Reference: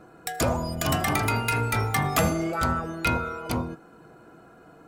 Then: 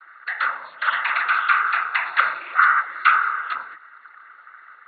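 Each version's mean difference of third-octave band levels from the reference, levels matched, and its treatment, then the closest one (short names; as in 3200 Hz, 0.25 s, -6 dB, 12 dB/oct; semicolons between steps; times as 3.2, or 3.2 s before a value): 19.0 dB: resonant high-pass 1500 Hz, resonance Q 10; noise vocoder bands 16; brick-wall FIR low-pass 4400 Hz; gain -1 dB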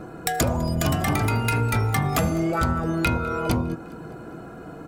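4.5 dB: low shelf 440 Hz +7.5 dB; compressor 6:1, threshold -28 dBFS, peak gain reduction 14 dB; on a send: feedback echo 0.203 s, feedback 56%, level -22.5 dB; on the sum: gain +8 dB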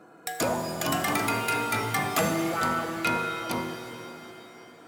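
6.5 dB: HPF 190 Hz 12 dB/oct; in parallel at -7 dB: wavefolder -18 dBFS; on the sum: shimmer reverb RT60 3 s, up +7 st, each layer -8 dB, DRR 5.5 dB; gain -4.5 dB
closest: second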